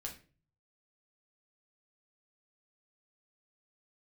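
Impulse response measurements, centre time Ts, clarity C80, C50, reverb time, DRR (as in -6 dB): 18 ms, 15.5 dB, 10.0 dB, 0.40 s, -0.5 dB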